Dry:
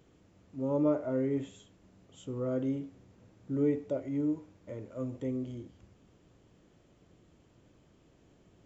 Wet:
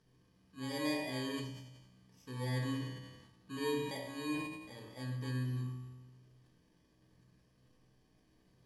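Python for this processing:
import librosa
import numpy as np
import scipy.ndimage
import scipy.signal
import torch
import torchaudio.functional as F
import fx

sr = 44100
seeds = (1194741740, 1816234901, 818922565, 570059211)

y = fx.bit_reversed(x, sr, seeds[0], block=32)
y = scipy.signal.sosfilt(scipy.signal.butter(2, 5000.0, 'lowpass', fs=sr, output='sos'), y)
y = fx.high_shelf(y, sr, hz=3100.0, db=10.0)
y = fx.comb_fb(y, sr, f0_hz=63.0, decay_s=1.4, harmonics='all', damping=0.0, mix_pct=80)
y = fx.room_shoebox(y, sr, seeds[1], volume_m3=560.0, walls='furnished', distance_m=1.6)
y = fx.sustainer(y, sr, db_per_s=50.0)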